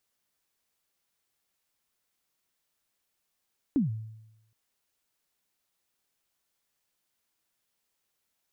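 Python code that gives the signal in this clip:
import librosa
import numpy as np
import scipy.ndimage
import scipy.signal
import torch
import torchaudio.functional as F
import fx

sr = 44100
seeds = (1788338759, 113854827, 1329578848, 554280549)

y = fx.drum_kick(sr, seeds[0], length_s=0.77, level_db=-19.5, start_hz=310.0, end_hz=110.0, sweep_ms=138.0, decay_s=0.91, click=False)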